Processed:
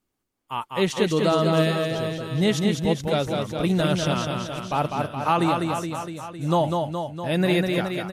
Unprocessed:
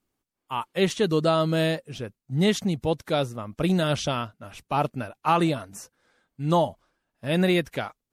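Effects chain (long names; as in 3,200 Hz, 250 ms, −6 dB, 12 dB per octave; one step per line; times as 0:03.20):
reverse bouncing-ball delay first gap 200 ms, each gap 1.1×, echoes 5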